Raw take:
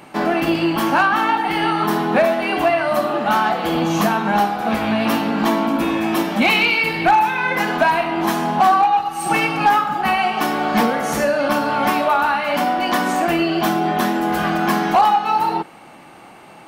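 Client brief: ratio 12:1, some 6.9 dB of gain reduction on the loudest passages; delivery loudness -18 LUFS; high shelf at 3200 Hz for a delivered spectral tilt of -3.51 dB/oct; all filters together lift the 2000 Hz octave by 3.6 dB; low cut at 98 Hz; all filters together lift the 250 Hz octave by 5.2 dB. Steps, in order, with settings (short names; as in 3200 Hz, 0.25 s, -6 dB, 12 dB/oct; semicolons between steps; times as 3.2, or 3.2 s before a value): HPF 98 Hz; bell 250 Hz +7 dB; bell 2000 Hz +6 dB; high shelf 3200 Hz -4 dB; compressor 12:1, threshold -15 dBFS; gain +1 dB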